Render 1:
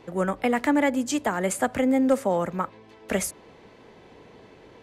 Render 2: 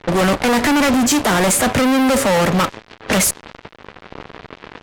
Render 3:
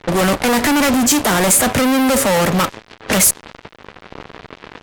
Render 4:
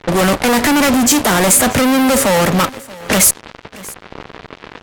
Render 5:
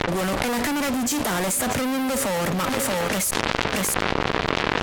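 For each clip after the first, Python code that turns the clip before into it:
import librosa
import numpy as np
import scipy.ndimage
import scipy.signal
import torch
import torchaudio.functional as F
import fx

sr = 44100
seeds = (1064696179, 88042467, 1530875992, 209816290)

y1 = fx.fuzz(x, sr, gain_db=41.0, gate_db=-45.0)
y1 = fx.env_lowpass(y1, sr, base_hz=2800.0, full_db=-14.0)
y2 = fx.high_shelf(y1, sr, hz=8900.0, db=9.5)
y3 = y2 + 10.0 ** (-21.0 / 20.0) * np.pad(y2, (int(632 * sr / 1000.0), 0))[:len(y2)]
y3 = y3 * librosa.db_to_amplitude(2.0)
y4 = fx.env_flatten(y3, sr, amount_pct=100)
y4 = y4 * librosa.db_to_amplitude(-15.5)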